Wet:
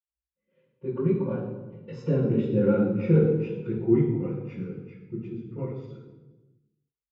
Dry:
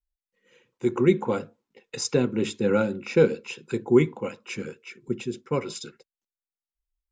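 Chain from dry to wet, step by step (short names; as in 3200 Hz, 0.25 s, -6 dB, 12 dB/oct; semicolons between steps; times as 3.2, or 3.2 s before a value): Doppler pass-by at 2.65, 22 m/s, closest 21 m; Bessel low-pass 2200 Hz, order 2; bell 830 Hz -3 dB 2.1 oct; in parallel at -2.5 dB: compressor, threshold -31 dBFS, peak gain reduction 14.5 dB; on the sum: reverb RT60 1.2 s, pre-delay 47 ms; gain +3.5 dB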